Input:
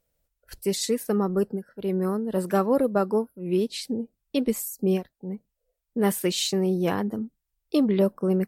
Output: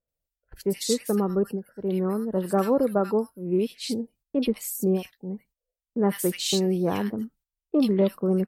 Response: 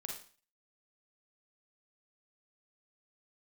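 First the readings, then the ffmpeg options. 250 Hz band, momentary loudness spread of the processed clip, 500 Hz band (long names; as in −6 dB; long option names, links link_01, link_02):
0.0 dB, 9 LU, 0.0 dB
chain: -filter_complex "[0:a]acrossover=split=1600[link_01][link_02];[link_02]adelay=80[link_03];[link_01][link_03]amix=inputs=2:normalize=0,agate=range=-12dB:threshold=-54dB:ratio=16:detection=peak"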